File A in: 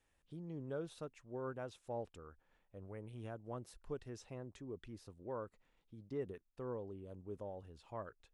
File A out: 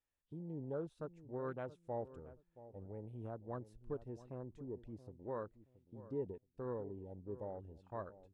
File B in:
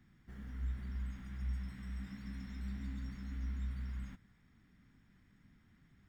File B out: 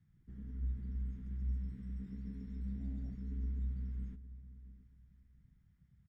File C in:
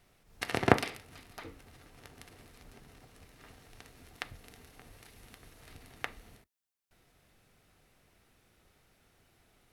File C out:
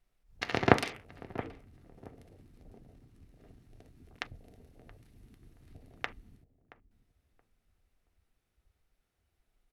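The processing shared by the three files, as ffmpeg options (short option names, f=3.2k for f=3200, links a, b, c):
-filter_complex "[0:a]afwtdn=0.00282,asplit=2[a][b];[b]adelay=675,lowpass=f=810:p=1,volume=-14dB,asplit=2[c][d];[d]adelay=675,lowpass=f=810:p=1,volume=0.26,asplit=2[e][f];[f]adelay=675,lowpass=f=810:p=1,volume=0.26[g];[a][c][e][g]amix=inputs=4:normalize=0,volume=1dB"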